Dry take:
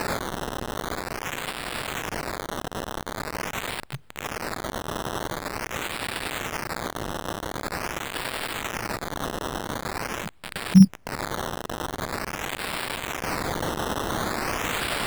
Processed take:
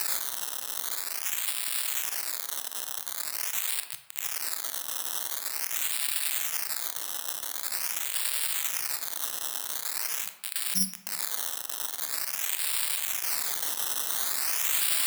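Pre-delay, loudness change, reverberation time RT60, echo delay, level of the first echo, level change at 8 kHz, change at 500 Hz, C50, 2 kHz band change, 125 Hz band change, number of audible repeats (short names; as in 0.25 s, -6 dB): 22 ms, 0.0 dB, 0.95 s, none, none, +8.0 dB, -18.0 dB, 10.0 dB, -6.5 dB, under -25 dB, none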